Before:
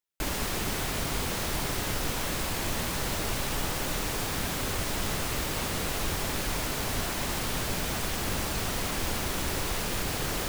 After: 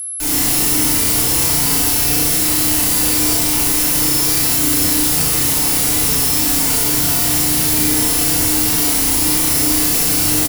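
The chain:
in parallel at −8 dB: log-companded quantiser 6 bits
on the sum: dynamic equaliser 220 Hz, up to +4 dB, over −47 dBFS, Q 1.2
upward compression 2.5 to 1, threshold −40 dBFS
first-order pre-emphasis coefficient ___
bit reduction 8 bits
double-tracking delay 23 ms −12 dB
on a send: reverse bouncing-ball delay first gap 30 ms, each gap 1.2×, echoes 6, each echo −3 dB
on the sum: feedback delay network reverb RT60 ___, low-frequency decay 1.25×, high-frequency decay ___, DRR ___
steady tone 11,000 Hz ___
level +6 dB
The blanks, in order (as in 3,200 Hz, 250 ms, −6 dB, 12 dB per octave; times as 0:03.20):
0.8, 1.1 s, 0.7×, −6 dB, −29 dBFS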